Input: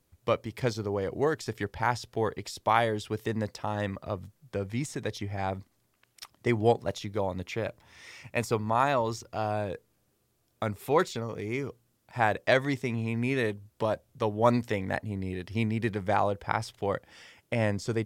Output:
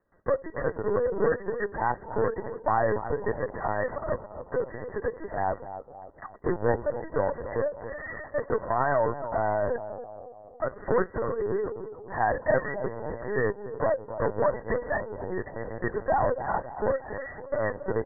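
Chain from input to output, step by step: companding laws mixed up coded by mu; gate -53 dBFS, range -15 dB; in parallel at -2 dB: compression 6:1, threshold -33 dBFS, peak gain reduction 15.5 dB; on the sum: saturation -23 dBFS, distortion -9 dB; brick-wall FIR band-pass 320–2000 Hz; on a send: bucket-brigade echo 275 ms, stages 2048, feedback 52%, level -11 dB; on the sum: LPC vocoder at 8 kHz pitch kept; trim +4.5 dB

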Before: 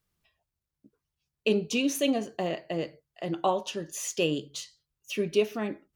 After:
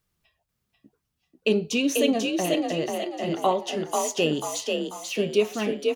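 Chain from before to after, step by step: frequency-shifting echo 490 ms, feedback 44%, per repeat +42 Hz, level -3.5 dB; trim +3 dB

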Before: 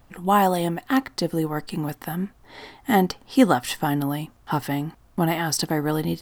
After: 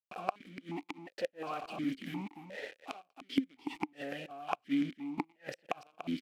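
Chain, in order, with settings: dynamic bell 690 Hz, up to -3 dB, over -33 dBFS, Q 2.7; companded quantiser 2-bit; inverted gate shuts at -15 dBFS, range -35 dB; on a send: delay 291 ms -10 dB; on the sum: stepped vowel filter 2.8 Hz; trim +1.5 dB

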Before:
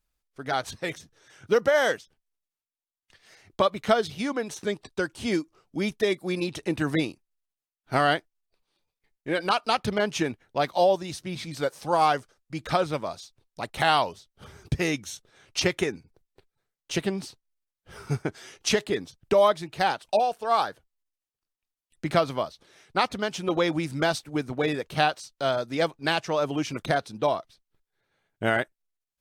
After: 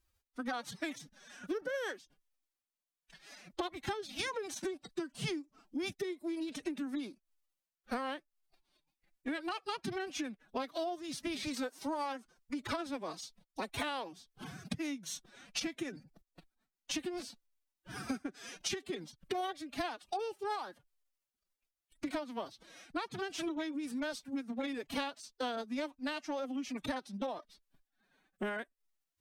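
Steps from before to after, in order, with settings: dynamic bell 170 Hz, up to +4 dB, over -44 dBFS, Q 1.6; compression 16:1, threshold -35 dBFS, peak gain reduction 21 dB; formant-preserving pitch shift +10.5 st; trim +1.5 dB

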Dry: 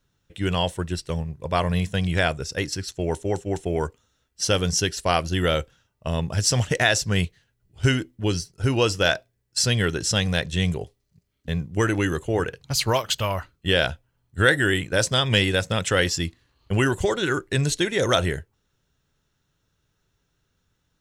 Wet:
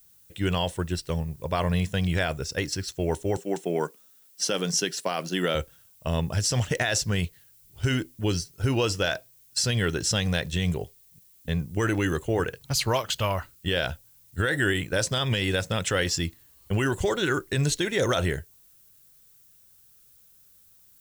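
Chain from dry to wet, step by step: 3.37–5.55 s: steep high-pass 160 Hz 36 dB/octave; peak limiter -13.5 dBFS, peak gain reduction 10 dB; added noise violet -56 dBFS; trim -1 dB

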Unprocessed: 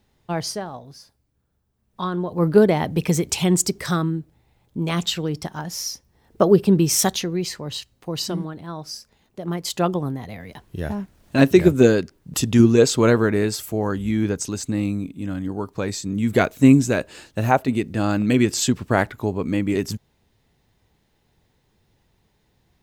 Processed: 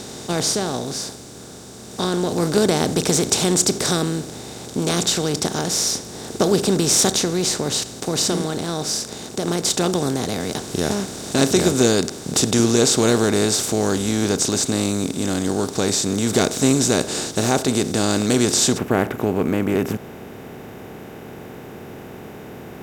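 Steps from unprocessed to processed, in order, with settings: spectral levelling over time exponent 0.4; high-order bell 5.9 kHz +8 dB, from 18.77 s -10.5 dB; trim -7.5 dB

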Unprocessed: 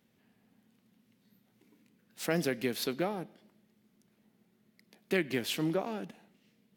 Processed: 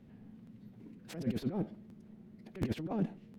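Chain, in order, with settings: compressor with a negative ratio -42 dBFS, ratio -1; time stretch by phase-locked vocoder 0.5×; tilt EQ -4 dB/octave; crackling interface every 0.72 s, samples 512, repeat, from 0.45 s

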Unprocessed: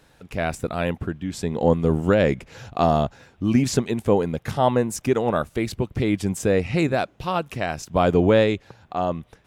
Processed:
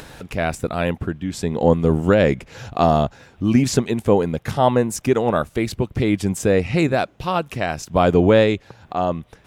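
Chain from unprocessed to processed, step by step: upward compressor, threshold -31 dBFS; trim +3 dB

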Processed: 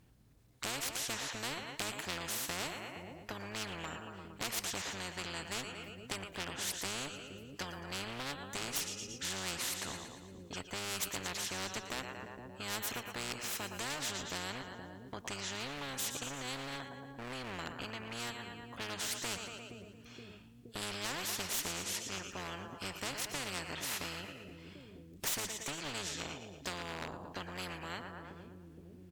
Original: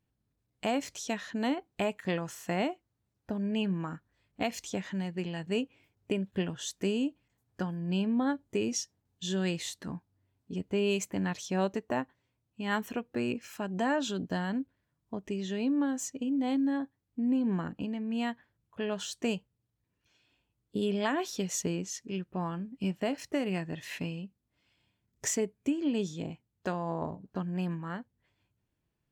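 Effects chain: on a send: two-band feedback delay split 370 Hz, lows 471 ms, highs 115 ms, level -16 dB; on the sum: harmony voices -12 st -8 dB; one-sided clip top -29 dBFS, bottom -20 dBFS; spectrum-flattening compressor 4:1

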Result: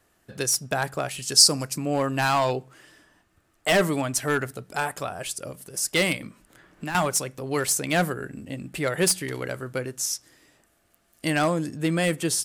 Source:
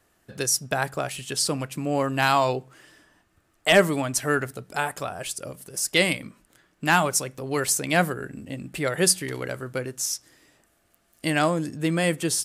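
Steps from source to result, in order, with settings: hard clipper -16 dBFS, distortion -13 dB; 1.22–1.78 s: resonant high shelf 4 kHz +7 dB, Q 3; 6.21–6.95 s: three bands compressed up and down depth 70%

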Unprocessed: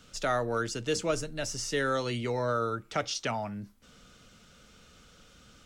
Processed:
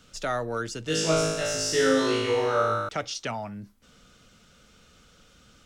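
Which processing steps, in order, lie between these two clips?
0.84–2.89 s: flutter echo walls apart 3.2 m, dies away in 1.3 s

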